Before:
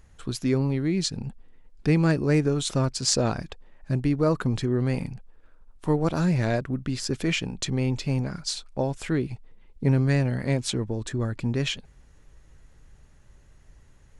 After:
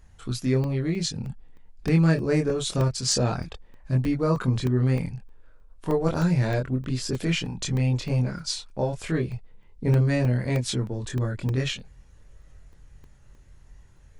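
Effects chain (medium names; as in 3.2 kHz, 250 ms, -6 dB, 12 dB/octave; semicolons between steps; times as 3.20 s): chorus voices 4, 0.15 Hz, delay 24 ms, depth 1.2 ms; crackling interface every 0.31 s, samples 64, zero, from 0.64 s; trim +2.5 dB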